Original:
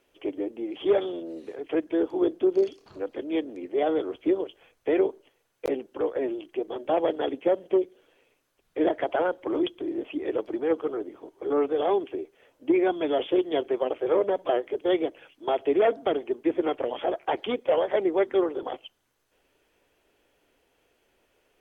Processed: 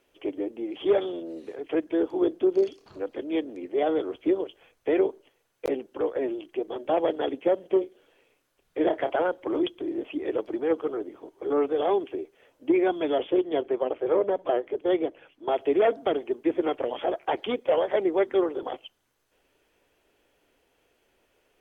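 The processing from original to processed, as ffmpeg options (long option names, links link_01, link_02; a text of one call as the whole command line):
ffmpeg -i in.wav -filter_complex "[0:a]asettb=1/sr,asplit=3[link_01][link_02][link_03];[link_01]atrim=end=7.734[link_04];[link_02]atrim=start=7.73:end=9.16,asetpts=PTS-STARTPTS,afade=type=in:duration=0.004:curve=qsin,afade=type=out:start_time=1.426:duration=0.004:curve=qsin,asplit=2[link_05][link_06];[link_06]adelay=31,volume=-10dB[link_07];[link_05][link_07]amix=inputs=2:normalize=0,atrim=end_sample=63063[link_08];[link_03]atrim=start=9.156[link_09];[link_04][link_08]acrossfade=duration=0.004:curve1=hsin:curve2=qsin[link_10];[link_10][link_09]acrossfade=duration=0.004:curve1=qsin:curve2=hsin,asettb=1/sr,asplit=3[link_11][link_12][link_13];[link_11]atrim=end=13.184[link_14];[link_12]atrim=start=13.18:end=15.52,asetpts=PTS-STARTPTS,afade=type=in:duration=0.004:curve=qsin,afade=type=out:start_time=2.336:duration=0.004:curve=qsin,highshelf=frequency=3100:gain=-9.5[link_15];[link_13]atrim=start=15.516[link_16];[link_14][link_15]acrossfade=duration=0.004:curve1=hsin:curve2=qsin[link_17];[link_17][link_16]acrossfade=duration=0.004:curve1=qsin:curve2=hsin" out.wav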